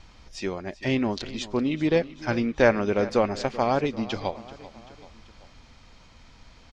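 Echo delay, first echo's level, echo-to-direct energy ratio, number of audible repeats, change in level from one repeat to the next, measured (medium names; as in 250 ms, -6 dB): 386 ms, -17.0 dB, -15.5 dB, 3, -5.0 dB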